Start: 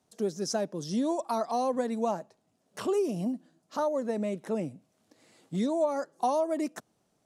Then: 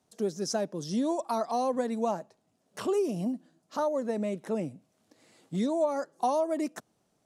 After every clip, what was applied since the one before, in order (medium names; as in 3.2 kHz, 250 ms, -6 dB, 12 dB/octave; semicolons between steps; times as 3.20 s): no audible change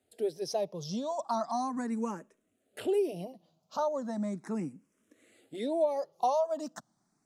barber-pole phaser +0.37 Hz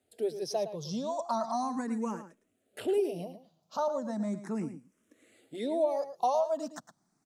echo from a far wall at 19 m, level -11 dB